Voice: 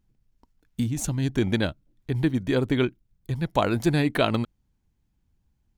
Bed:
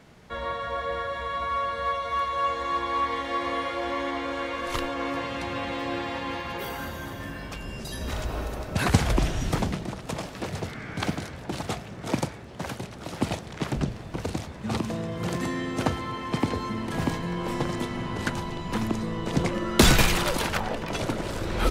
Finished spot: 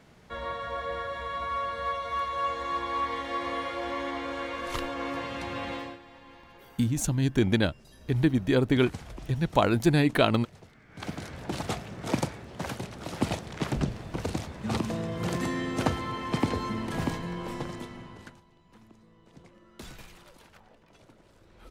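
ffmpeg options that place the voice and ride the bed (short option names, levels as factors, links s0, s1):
-filter_complex "[0:a]adelay=6000,volume=1[s0];[1:a]volume=5.62,afade=t=out:st=5.74:d=0.24:silence=0.158489,afade=t=in:st=10.89:d=0.53:silence=0.11885,afade=t=out:st=16.68:d=1.73:silence=0.0446684[s1];[s0][s1]amix=inputs=2:normalize=0"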